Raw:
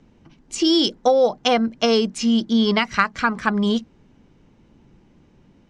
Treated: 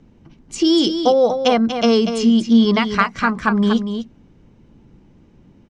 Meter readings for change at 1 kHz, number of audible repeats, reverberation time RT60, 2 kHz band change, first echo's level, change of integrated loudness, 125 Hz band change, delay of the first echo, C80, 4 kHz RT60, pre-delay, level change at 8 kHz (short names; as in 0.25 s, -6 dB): +2.0 dB, 1, none, +0.5 dB, -8.0 dB, +3.0 dB, n/a, 0.24 s, none, none, none, -0.5 dB